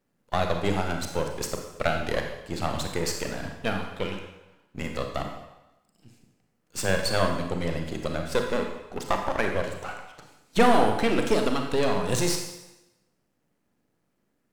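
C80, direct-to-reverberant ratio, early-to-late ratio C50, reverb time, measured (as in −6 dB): 7.0 dB, 3.0 dB, 5.0 dB, 0.95 s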